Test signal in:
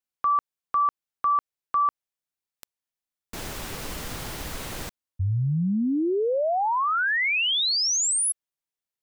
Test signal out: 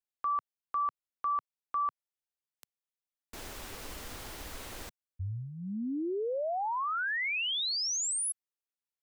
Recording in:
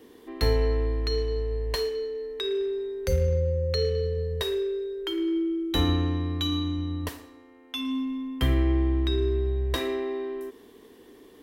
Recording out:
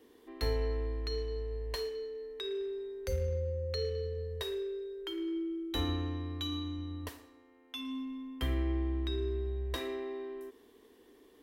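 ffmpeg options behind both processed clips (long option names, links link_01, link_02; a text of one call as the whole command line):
ffmpeg -i in.wav -af "equalizer=frequency=150:width=2.5:gain=-11.5,volume=-8.5dB" out.wav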